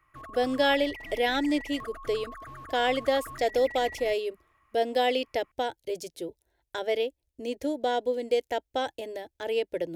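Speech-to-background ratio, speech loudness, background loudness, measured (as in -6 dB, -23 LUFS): 13.5 dB, -29.0 LUFS, -42.5 LUFS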